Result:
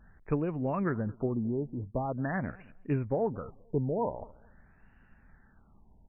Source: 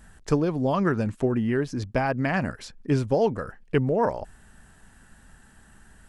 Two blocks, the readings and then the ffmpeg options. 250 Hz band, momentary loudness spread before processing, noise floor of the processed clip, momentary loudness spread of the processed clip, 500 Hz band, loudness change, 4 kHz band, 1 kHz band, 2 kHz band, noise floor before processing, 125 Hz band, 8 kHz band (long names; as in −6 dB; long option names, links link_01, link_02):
−7.0 dB, 9 LU, −62 dBFS, 9 LU, −8.0 dB, −7.5 dB, below −30 dB, −8.0 dB, −11.0 dB, −55 dBFS, −6.0 dB, below −30 dB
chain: -filter_complex "[0:a]bass=frequency=250:gain=2,treble=frequency=4000:gain=3,asplit=2[link_01][link_02];[link_02]adelay=219,lowpass=frequency=1500:poles=1,volume=-22.5dB,asplit=2[link_03][link_04];[link_04]adelay=219,lowpass=frequency=1500:poles=1,volume=0.2[link_05];[link_01][link_03][link_05]amix=inputs=3:normalize=0,afftfilt=real='re*lt(b*sr/1024,970*pow(3000/970,0.5+0.5*sin(2*PI*0.45*pts/sr)))':imag='im*lt(b*sr/1024,970*pow(3000/970,0.5+0.5*sin(2*PI*0.45*pts/sr)))':win_size=1024:overlap=0.75,volume=-8dB"